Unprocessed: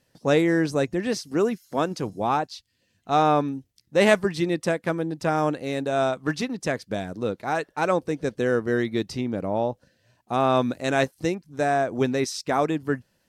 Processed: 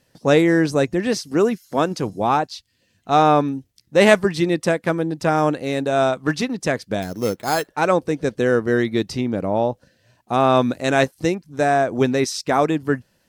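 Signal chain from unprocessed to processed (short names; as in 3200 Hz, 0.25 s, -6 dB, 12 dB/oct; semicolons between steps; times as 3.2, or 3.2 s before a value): 7.02–7.68 sample-rate reducer 5800 Hz, jitter 0%; gain +5 dB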